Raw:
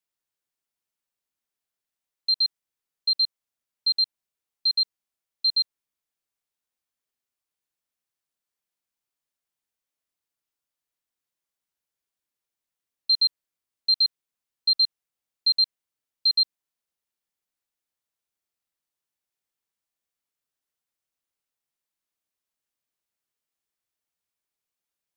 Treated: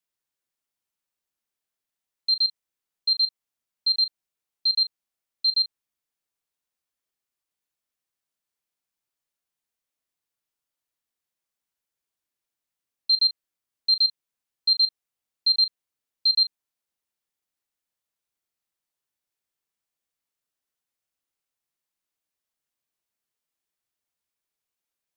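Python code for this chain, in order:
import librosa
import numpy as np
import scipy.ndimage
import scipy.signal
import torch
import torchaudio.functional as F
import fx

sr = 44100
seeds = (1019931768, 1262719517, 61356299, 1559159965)

y = fx.doubler(x, sr, ms=37.0, db=-12.5)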